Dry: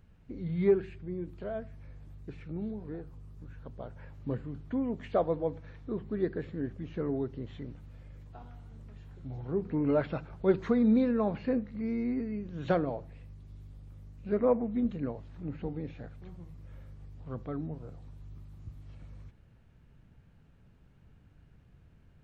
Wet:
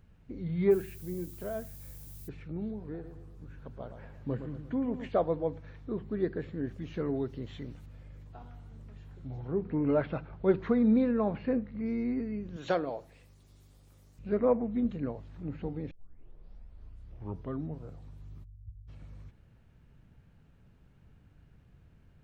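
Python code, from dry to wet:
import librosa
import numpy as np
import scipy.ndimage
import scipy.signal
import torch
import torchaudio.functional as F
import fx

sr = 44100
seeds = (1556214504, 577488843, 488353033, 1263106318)

y = fx.dmg_noise_colour(x, sr, seeds[0], colour='violet', level_db=-52.0, at=(0.7, 2.27), fade=0.02)
y = fx.echo_feedback(y, sr, ms=115, feedback_pct=50, wet_db=-9, at=(2.92, 5.09))
y = fx.high_shelf(y, sr, hz=2700.0, db=9.0, at=(6.67, 7.86))
y = fx.lowpass(y, sr, hz=3500.0, slope=12, at=(9.48, 11.86))
y = fx.bass_treble(y, sr, bass_db=-11, treble_db=11, at=(12.56, 14.19))
y = fx.cheby2_lowpass(y, sr, hz=610.0, order=4, stop_db=80, at=(18.43, 18.87), fade=0.02)
y = fx.edit(y, sr, fx.tape_start(start_s=15.91, length_s=1.74), tone=tone)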